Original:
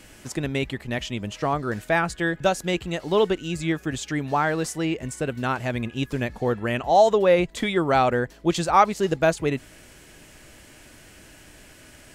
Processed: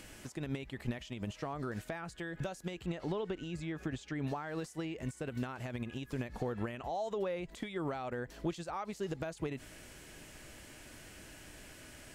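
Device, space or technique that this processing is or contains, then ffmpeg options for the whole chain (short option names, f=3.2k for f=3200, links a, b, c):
de-esser from a sidechain: -filter_complex "[0:a]asettb=1/sr,asplit=3[a][b][c];[a]atrim=end=2.864[d];[b]atrim=start=2.86:end=4.27,asetpts=PTS-STARTPTS,afade=t=in:d=0.004:c=qsin,afade=t=out:st=1.406:d=0.004:c=qsin,aemphasis=mode=reproduction:type=50kf[e];[c]atrim=start=4.266[f];[d][e]acrossfade=d=0.004:c1=hsin:c2=qsin[g];[g][f]acrossfade=d=0.004:c1=qsin:c2=hsin,asplit=2[h][i];[i]highpass=f=6.5k:p=1,apad=whole_len=535480[j];[h][j]sidechaincompress=threshold=-59dB:ratio=4:attack=2.5:release=64,volume=2dB"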